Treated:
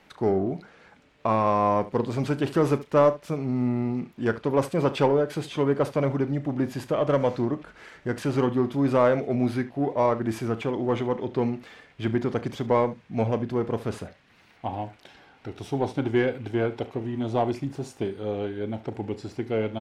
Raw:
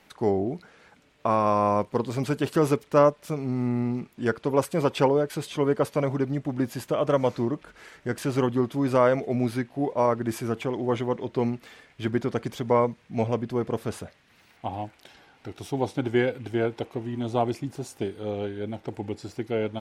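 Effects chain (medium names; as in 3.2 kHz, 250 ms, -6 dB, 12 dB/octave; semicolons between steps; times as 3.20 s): treble shelf 6.9 kHz -11.5 dB; in parallel at -5.5 dB: saturation -23 dBFS, distortion -9 dB; on the sum: early reflections 36 ms -14.5 dB, 72 ms -17 dB; trim -2 dB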